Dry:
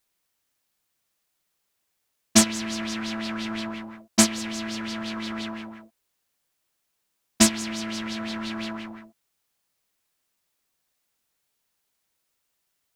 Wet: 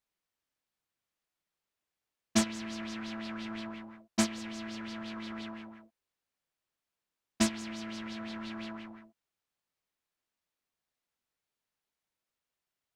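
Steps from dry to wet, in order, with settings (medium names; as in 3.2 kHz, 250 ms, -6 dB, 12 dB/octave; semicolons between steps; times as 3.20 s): treble shelf 5.7 kHz -10.5 dB; trim -8.5 dB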